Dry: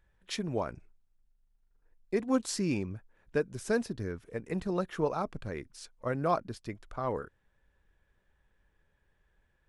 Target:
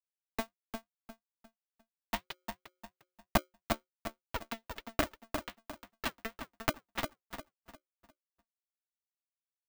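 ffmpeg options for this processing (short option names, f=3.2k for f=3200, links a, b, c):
-filter_complex "[0:a]afwtdn=0.0112,acompressor=threshold=-43dB:ratio=12,aresample=16000,acrusher=bits=5:mix=0:aa=0.000001,aresample=44100,afreqshift=81,aphaser=in_gain=1:out_gain=1:delay=4.5:decay=0.78:speed=1.2:type=sinusoidal,highpass=f=140:w=0.5412,highpass=f=140:w=1.3066,equalizer=f=150:t=q:w=4:g=7,equalizer=f=310:t=q:w=4:g=-8,equalizer=f=580:t=q:w=4:g=-8,equalizer=f=1.1k:t=q:w=4:g=-5,equalizer=f=2k:t=q:w=4:g=-7,lowpass=f=3.5k:w=0.5412,lowpass=f=3.5k:w=1.3066,asplit=2[a][b];[b]adelay=352,lowpass=f=1.1k:p=1,volume=-5dB,asplit=2[c][d];[d]adelay=352,lowpass=f=1.1k:p=1,volume=0.35,asplit=2[e][f];[f]adelay=352,lowpass=f=1.1k:p=1,volume=0.35,asplit=2[g][h];[h]adelay=352,lowpass=f=1.1k:p=1,volume=0.35[i];[a][c][e][g][i]amix=inputs=5:normalize=0,aeval=exprs='val(0)*sgn(sin(2*PI*450*n/s))':c=same,volume=10dB"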